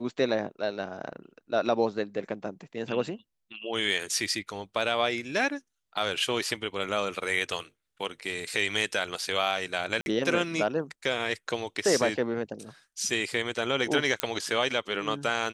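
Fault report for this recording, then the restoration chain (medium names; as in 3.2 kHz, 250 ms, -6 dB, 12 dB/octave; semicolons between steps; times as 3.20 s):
10.01–10.06 s: dropout 51 ms
14.20 s: pop -9 dBFS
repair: de-click; interpolate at 10.01 s, 51 ms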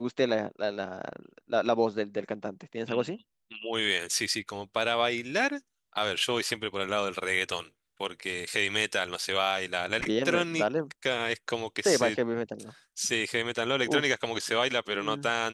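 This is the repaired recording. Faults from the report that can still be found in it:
nothing left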